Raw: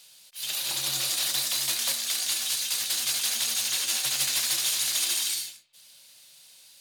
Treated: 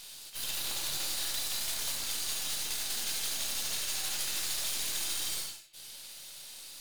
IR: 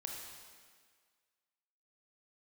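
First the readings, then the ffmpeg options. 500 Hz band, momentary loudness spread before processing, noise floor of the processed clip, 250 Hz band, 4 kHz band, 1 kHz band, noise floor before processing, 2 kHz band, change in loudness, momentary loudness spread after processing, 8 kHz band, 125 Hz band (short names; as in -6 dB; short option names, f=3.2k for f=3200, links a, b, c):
-2.5 dB, 5 LU, -48 dBFS, -2.0 dB, -7.5 dB, -4.0 dB, -54 dBFS, -6.5 dB, -7.0 dB, 13 LU, -7.5 dB, -3.5 dB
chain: -filter_complex "[0:a]acompressor=threshold=-46dB:ratio=2.5,aeval=exprs='0.0335*(cos(1*acos(clip(val(0)/0.0335,-1,1)))-cos(1*PI/2))+0.00596*(cos(6*acos(clip(val(0)/0.0335,-1,1)))-cos(6*PI/2))':c=same[a];[1:a]atrim=start_sample=2205,afade=t=out:st=0.15:d=0.01,atrim=end_sample=7056[b];[a][b]afir=irnorm=-1:irlink=0,volume=8.5dB"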